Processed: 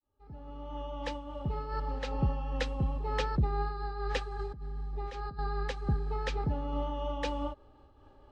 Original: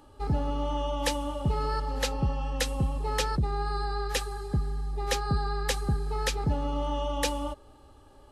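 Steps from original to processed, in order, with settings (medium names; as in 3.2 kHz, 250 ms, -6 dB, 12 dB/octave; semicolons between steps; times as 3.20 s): fade-in on the opening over 2.02 s; treble shelf 6 kHz -10 dB; 4.39–5.39 s: compressor with a negative ratio -34 dBFS, ratio -1; distance through air 120 m; random flutter of the level, depth 65%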